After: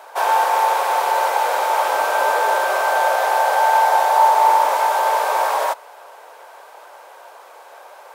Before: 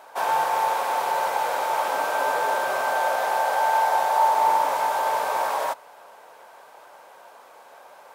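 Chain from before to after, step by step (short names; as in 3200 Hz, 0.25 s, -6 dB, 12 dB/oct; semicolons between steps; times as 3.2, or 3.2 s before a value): HPF 350 Hz 24 dB/oct; gain +6 dB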